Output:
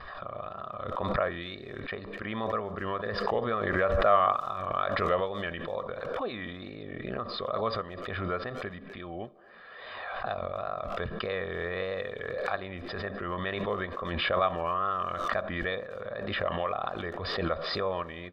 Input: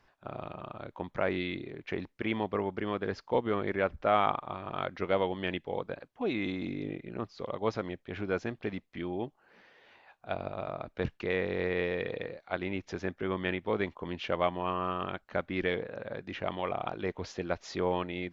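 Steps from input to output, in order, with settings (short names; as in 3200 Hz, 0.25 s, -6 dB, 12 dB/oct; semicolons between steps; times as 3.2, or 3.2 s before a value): wow and flutter 130 cents; rippled Chebyshev low-pass 5100 Hz, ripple 9 dB; high shelf 3500 Hz -5.5 dB; comb 1.7 ms, depth 59%; speakerphone echo 0.25 s, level -23 dB; on a send at -16 dB: reverb RT60 0.60 s, pre-delay 3 ms; on the sum: backwards sustainer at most 29 dB/s; gain +4.5 dB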